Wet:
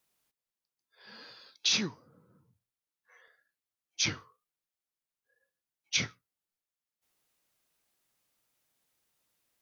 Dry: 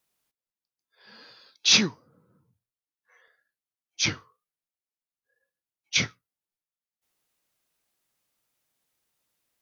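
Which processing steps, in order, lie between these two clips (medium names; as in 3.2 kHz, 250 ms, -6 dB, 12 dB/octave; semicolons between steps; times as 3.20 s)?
compression 5:1, threshold -26 dBFS, peak gain reduction 11 dB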